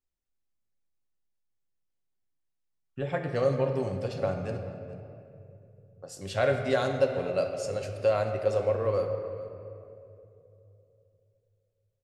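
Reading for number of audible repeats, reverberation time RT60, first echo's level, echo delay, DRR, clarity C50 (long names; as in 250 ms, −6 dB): 1, 2.8 s, −18.5 dB, 437 ms, 4.0 dB, 5.5 dB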